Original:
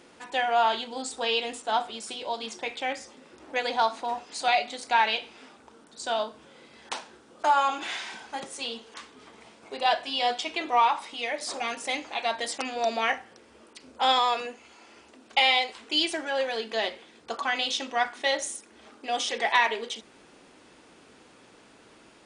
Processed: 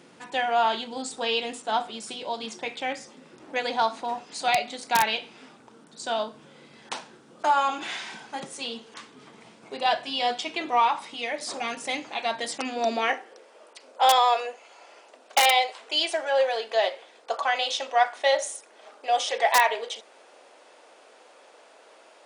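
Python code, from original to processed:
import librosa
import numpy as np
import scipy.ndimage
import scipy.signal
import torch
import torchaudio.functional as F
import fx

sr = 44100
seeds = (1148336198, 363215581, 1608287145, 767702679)

y = (np.mod(10.0 ** (11.0 / 20.0) * x + 1.0, 2.0) - 1.0) / 10.0 ** (11.0 / 20.0)
y = fx.filter_sweep_highpass(y, sr, from_hz=140.0, to_hz=590.0, start_s=12.51, end_s=13.51, q=2.5)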